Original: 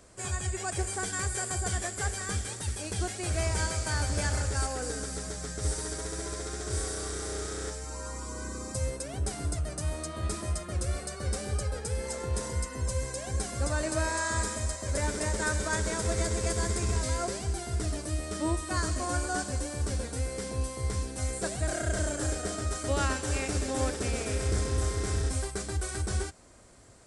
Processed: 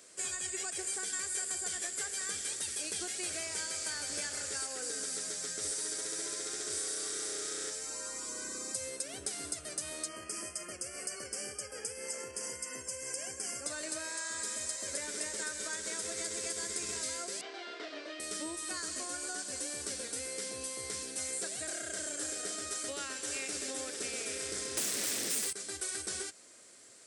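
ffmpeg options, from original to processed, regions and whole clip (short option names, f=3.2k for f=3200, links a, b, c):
-filter_complex "[0:a]asettb=1/sr,asplit=3[a][b][c];[a]atrim=end=10.084[d];[b]atrim=start=10.08:end=13.66,asetpts=PTS-STARTPTS,afade=t=in:d=0.004:c=qsin,afade=t=out:st=3.576:d=0.004:c=qsin,acompressor=threshold=-33dB:ratio=3:attack=3.2:release=140:knee=1:detection=peak,asuperstop=centerf=3800:order=8:qfactor=2.9[e];[c]atrim=start=13.656[f];[d][e]acrossfade=d=0.004:c1=hsin:c2=qsin[g];[g][f]acrossfade=d=0.004:c1=qsin:c2=hsin,asettb=1/sr,asplit=3[h][i][j];[h]atrim=end=17.414[k];[i]atrim=start=17.41:end=18.2,asetpts=PTS-STARTPTS,afade=t=in:d=0.004:c=qsin,afade=t=out:st=0.786:d=0.004:c=qsin,highpass=f=300:w=0.5412,highpass=f=300:w=1.3066,equalizer=f=390:t=q:w=4:g=-6,equalizer=f=640:t=q:w=4:g=5,equalizer=f=1k:t=q:w=4:g=3,lowpass=f=3.7k:w=0.5412,lowpass=f=3.7k:w=1.3066,asplit=2[l][m];[m]adelay=28,volume=-2.5dB[n];[l][n]amix=inputs=2:normalize=0,atrim=end_sample=34839[o];[j]atrim=start=18.196[p];[k][o]acrossfade=d=0.004:c1=hsin:c2=qsin[q];[q][p]acrossfade=d=0.004:c1=qsin:c2=hsin,asettb=1/sr,asplit=3[r][s][t];[r]atrim=end=24.774[u];[s]atrim=start=24.77:end=25.53,asetpts=PTS-STARTPTS,afade=t=in:d=0.004:c=qsin,afade=t=out:st=0.756:d=0.004:c=qsin,equalizer=f=750:t=o:w=1.1:g=-11.5,aeval=exprs='0.119*sin(PI/2*5.62*val(0)/0.119)':c=same[v];[t]atrim=start=25.526[w];[u][v]acrossfade=d=0.004:c1=hsin:c2=qsin[x];[x][w]acrossfade=d=0.004:c1=qsin:c2=hsin,highpass=480,acompressor=threshold=-37dB:ratio=4,equalizer=f=860:t=o:w=1.6:g=-13.5,volume=5dB"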